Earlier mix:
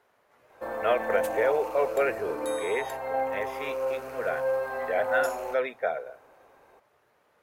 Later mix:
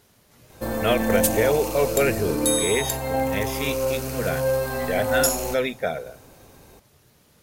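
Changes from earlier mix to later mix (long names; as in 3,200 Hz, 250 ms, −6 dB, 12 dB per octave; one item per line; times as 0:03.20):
background: send +10.0 dB
master: remove three-way crossover with the lows and the highs turned down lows −22 dB, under 440 Hz, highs −20 dB, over 2,100 Hz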